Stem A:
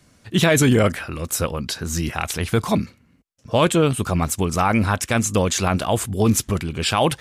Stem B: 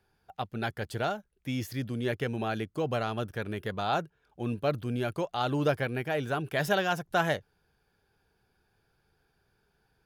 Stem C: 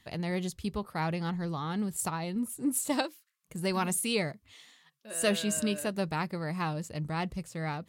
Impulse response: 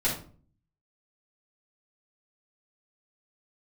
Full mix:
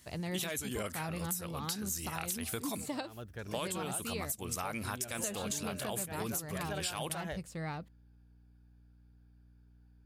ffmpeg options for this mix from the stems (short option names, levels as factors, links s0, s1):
-filter_complex "[0:a]highpass=f=270:p=1,aemphasis=mode=production:type=75fm,alimiter=limit=0.668:level=0:latency=1:release=241,volume=0.282[s0];[1:a]aeval=exprs='val(0)+0.00251*(sin(2*PI*60*n/s)+sin(2*PI*2*60*n/s)/2+sin(2*PI*3*60*n/s)/3+sin(2*PI*4*60*n/s)/4+sin(2*PI*5*60*n/s)/5)':c=same,volume=0.335,afade=t=in:st=3.06:d=0.29:silence=0.266073[s1];[2:a]deesser=0.55,volume=0.668[s2];[s0][s1][s2]amix=inputs=3:normalize=0,equalizer=f=80:t=o:w=0.44:g=10.5,acompressor=threshold=0.02:ratio=6"